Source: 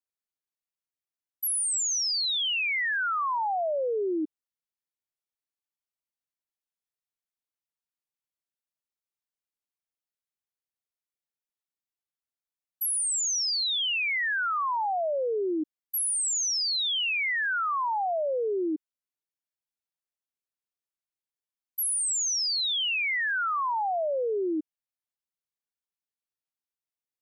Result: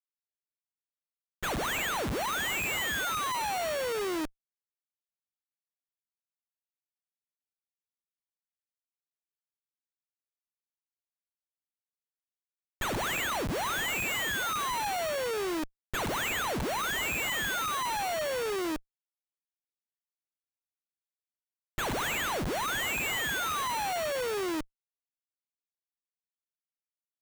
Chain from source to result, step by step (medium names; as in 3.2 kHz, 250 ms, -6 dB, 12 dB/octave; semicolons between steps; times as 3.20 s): sample-rate reducer 5 kHz, jitter 0%; Chebyshev shaper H 2 -42 dB, 4 -11 dB, 6 -42 dB, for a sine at -24.5 dBFS; Schmitt trigger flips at -36.5 dBFS